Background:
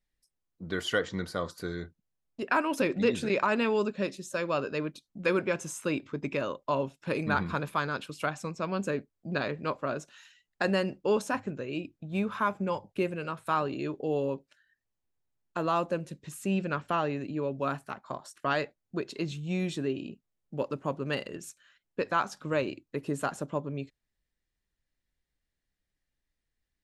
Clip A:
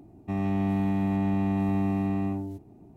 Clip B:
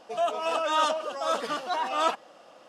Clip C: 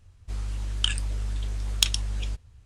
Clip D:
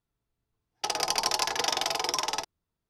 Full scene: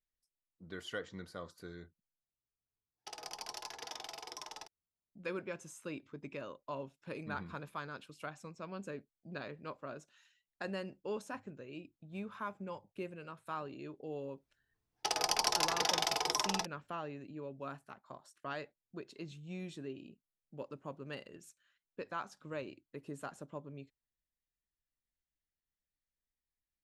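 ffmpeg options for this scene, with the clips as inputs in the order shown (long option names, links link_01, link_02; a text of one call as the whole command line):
ffmpeg -i bed.wav -i cue0.wav -i cue1.wav -i cue2.wav -i cue3.wav -filter_complex "[4:a]asplit=2[link_01][link_02];[0:a]volume=-13dB,asplit=2[link_03][link_04];[link_03]atrim=end=2.234[link_05];[link_01]atrim=end=2.89,asetpts=PTS-STARTPTS,volume=-18dB[link_06];[link_04]atrim=start=5.116[link_07];[link_02]atrim=end=2.89,asetpts=PTS-STARTPTS,volume=-4.5dB,afade=type=in:duration=0.004:curve=hsin,afade=type=out:start_time=2.886:duration=0.004:curve=hsin,adelay=14210[link_08];[link_05][link_06]acrossfade=duration=0.004:curve1=hsin:curve2=hsin[link_09];[link_09][link_07]acrossfade=duration=0.004:curve1=hsin:curve2=hsin[link_10];[link_10][link_08]amix=inputs=2:normalize=0" out.wav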